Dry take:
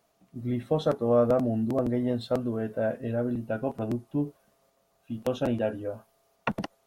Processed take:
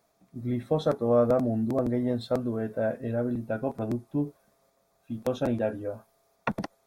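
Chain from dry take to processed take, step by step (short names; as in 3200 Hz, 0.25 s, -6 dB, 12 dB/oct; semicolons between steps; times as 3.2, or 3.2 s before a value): notch 2900 Hz, Q 5.2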